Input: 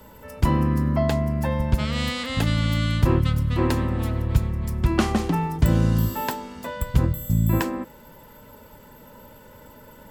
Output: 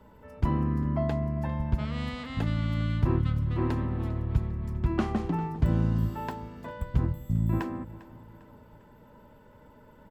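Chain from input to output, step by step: low-pass 1.4 kHz 6 dB/octave; band-stop 530 Hz, Q 12; on a send: feedback delay 400 ms, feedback 43%, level -18 dB; on the sum: trim -6 dB

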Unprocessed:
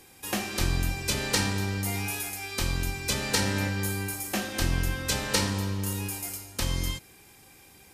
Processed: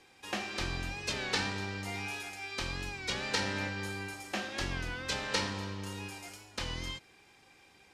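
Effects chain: low-pass 4.7 kHz 12 dB/octave; bass shelf 290 Hz -9.5 dB; warped record 33 1/3 rpm, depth 100 cents; trim -3 dB

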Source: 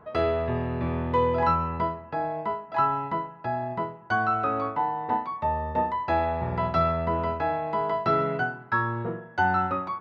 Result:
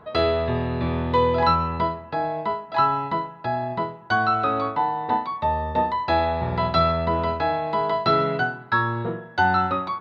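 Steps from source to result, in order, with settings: peaking EQ 3.9 kHz +13.5 dB 0.51 oct; trim +3.5 dB

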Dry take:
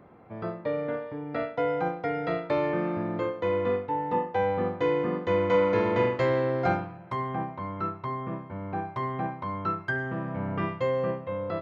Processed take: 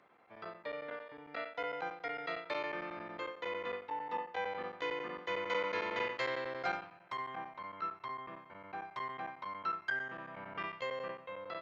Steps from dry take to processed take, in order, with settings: differentiator; square tremolo 11 Hz, duty 90%; distance through air 130 m; trim +9.5 dB

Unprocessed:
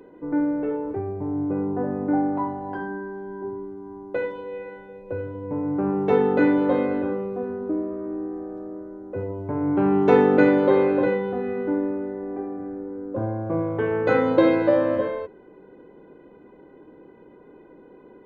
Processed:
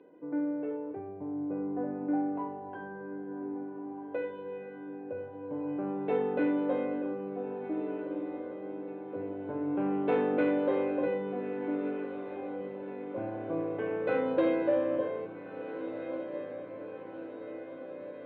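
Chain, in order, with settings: saturation -9.5 dBFS, distortion -19 dB; cabinet simulation 210–3200 Hz, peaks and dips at 220 Hz -6 dB, 390 Hz -6 dB, 890 Hz -6 dB, 1.3 kHz -7 dB, 1.9 kHz -6 dB; echo that smears into a reverb 1607 ms, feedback 62%, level -10 dB; trim -5.5 dB

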